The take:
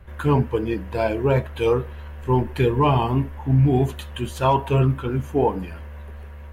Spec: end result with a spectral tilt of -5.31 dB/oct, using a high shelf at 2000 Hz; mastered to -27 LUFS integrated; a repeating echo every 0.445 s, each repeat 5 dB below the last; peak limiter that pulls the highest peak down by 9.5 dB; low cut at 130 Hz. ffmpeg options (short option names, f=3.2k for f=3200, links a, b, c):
-af "highpass=130,highshelf=f=2k:g=8.5,alimiter=limit=-15.5dB:level=0:latency=1,aecho=1:1:445|890|1335|1780|2225|2670|3115:0.562|0.315|0.176|0.0988|0.0553|0.031|0.0173,volume=-1.5dB"